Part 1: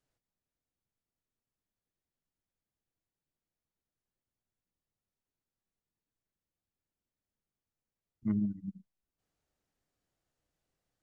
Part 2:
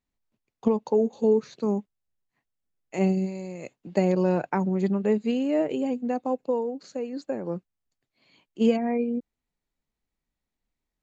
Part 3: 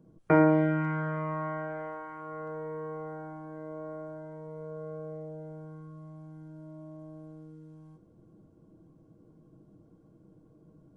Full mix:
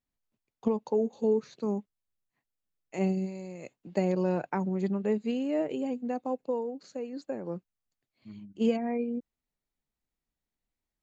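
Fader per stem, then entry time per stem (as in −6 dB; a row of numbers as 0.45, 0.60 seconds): −15.5 dB, −5.0 dB, muted; 0.00 s, 0.00 s, muted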